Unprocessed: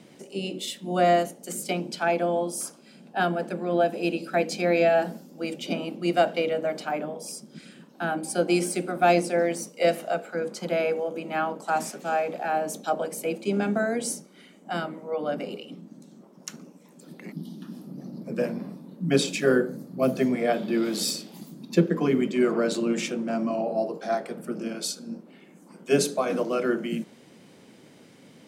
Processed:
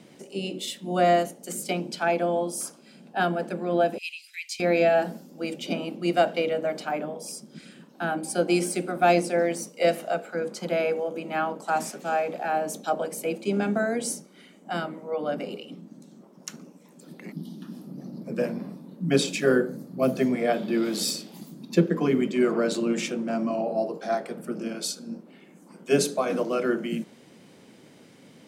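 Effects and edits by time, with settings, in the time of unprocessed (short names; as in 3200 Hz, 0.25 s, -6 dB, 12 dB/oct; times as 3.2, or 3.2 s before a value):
3.98–4.6 Chebyshev high-pass 2000 Hz, order 6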